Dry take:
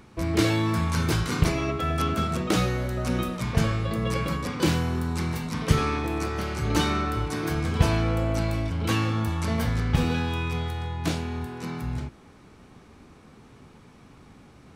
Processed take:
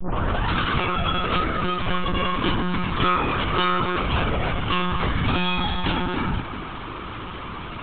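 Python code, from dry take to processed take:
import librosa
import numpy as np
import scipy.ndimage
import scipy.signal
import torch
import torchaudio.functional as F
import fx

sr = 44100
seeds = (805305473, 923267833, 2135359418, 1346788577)

y = fx.tape_start_head(x, sr, length_s=1.06)
y = fx.rider(y, sr, range_db=3, speed_s=2.0)
y = fx.stretch_vocoder_free(y, sr, factor=0.53)
y = fx.peak_eq(y, sr, hz=1200.0, db=10.5, octaves=0.95)
y = y + 10.0 ** (-18.5 / 20.0) * np.pad(y, (int(235 * sr / 1000.0), 0))[:len(y)]
y = fx.lpc_monotone(y, sr, seeds[0], pitch_hz=180.0, order=16)
y = fx.peak_eq(y, sr, hz=3100.0, db=10.5, octaves=0.67)
y = fx.env_flatten(y, sr, amount_pct=50)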